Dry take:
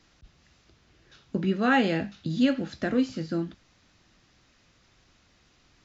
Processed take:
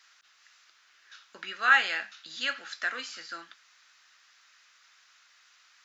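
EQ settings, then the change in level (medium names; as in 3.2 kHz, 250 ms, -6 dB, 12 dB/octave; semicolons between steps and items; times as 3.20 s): resonant high-pass 1.4 kHz, resonance Q 2; treble shelf 5.1 kHz +7.5 dB; 0.0 dB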